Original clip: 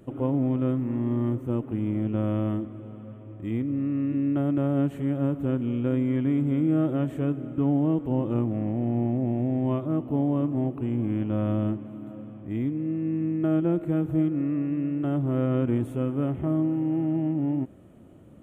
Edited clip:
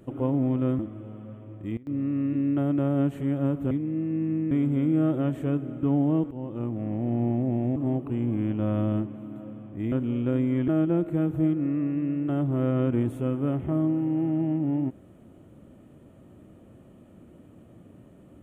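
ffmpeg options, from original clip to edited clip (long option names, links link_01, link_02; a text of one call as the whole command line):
ffmpeg -i in.wav -filter_complex "[0:a]asplit=10[link_01][link_02][link_03][link_04][link_05][link_06][link_07][link_08][link_09][link_10];[link_01]atrim=end=0.792[link_11];[link_02]atrim=start=2.578:end=3.56,asetpts=PTS-STARTPTS,afade=type=out:start_time=0.642:duration=0.34:curve=log:silence=0.0841395[link_12];[link_03]atrim=start=3.56:end=3.66,asetpts=PTS-STARTPTS,volume=-21.5dB[link_13];[link_04]atrim=start=3.66:end=5.502,asetpts=PTS-STARTPTS,afade=type=in:duration=0.34:curve=log:silence=0.0841395[link_14];[link_05]atrim=start=12.628:end=13.432[link_15];[link_06]atrim=start=6.258:end=8.06,asetpts=PTS-STARTPTS,afade=type=out:start_time=1.798:duration=0.004:curve=hsin:silence=0.237137[link_16];[link_07]atrim=start=8.06:end=9.512,asetpts=PTS-STARTPTS,afade=type=in:duration=0.82:silence=0.237137[link_17];[link_08]atrim=start=10.468:end=12.632[link_18];[link_09]atrim=start=5.498:end=6.262[link_19];[link_10]atrim=start=13.428[link_20];[link_12][link_13][link_14]concat=n=3:v=0:a=1[link_21];[link_11][link_21]acrossfade=duration=0.004:curve1=hsin:curve2=hsin[link_22];[link_22][link_15]acrossfade=duration=0.004:curve1=hsin:curve2=hsin[link_23];[link_16][link_17]concat=n=2:v=0:a=1[link_24];[link_23][link_24]acrossfade=duration=0.004:curve1=hsin:curve2=hsin[link_25];[link_25][link_18]acrossfade=duration=0.004:curve1=hsin:curve2=hsin[link_26];[link_26][link_19]acrossfade=duration=0.004:curve1=hsin:curve2=hsin[link_27];[link_27][link_20]acrossfade=duration=0.004:curve1=hsin:curve2=hsin" out.wav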